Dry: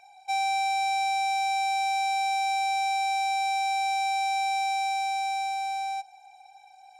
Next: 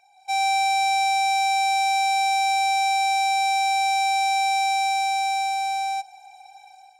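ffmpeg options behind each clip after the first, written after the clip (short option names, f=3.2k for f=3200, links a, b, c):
-af "highshelf=f=4.5k:g=4,dynaudnorm=f=110:g=5:m=11dB,volume=-6dB"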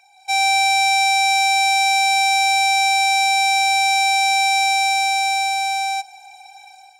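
-af "highpass=1k,volume=8.5dB"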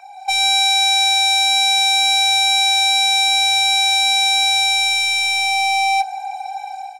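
-filter_complex "[0:a]acrossover=split=1300[a][b];[a]aeval=exprs='0.158*sin(PI/2*3.55*val(0)/0.158)':c=same[c];[c][b]amix=inputs=2:normalize=0,asplit=2[d][e];[e]adelay=22,volume=-12dB[f];[d][f]amix=inputs=2:normalize=0,volume=2.5dB"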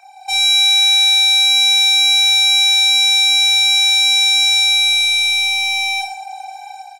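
-filter_complex "[0:a]highshelf=f=2.3k:g=7.5,asplit=2[a][b];[b]aecho=0:1:30|67.5|114.4|173|246.2:0.631|0.398|0.251|0.158|0.1[c];[a][c]amix=inputs=2:normalize=0,volume=-6.5dB"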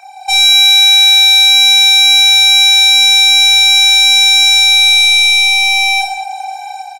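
-filter_complex "[0:a]lowshelf=f=180:g=9,acontrast=49,asplit=2[a][b];[b]adelay=200,highpass=300,lowpass=3.4k,asoftclip=type=hard:threshold=-11dB,volume=-15dB[c];[a][c]amix=inputs=2:normalize=0,volume=1.5dB"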